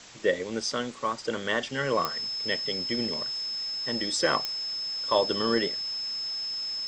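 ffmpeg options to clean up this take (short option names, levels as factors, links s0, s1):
-af "adeclick=t=4,bandreject=f=5200:w=30,afwtdn=0.0056"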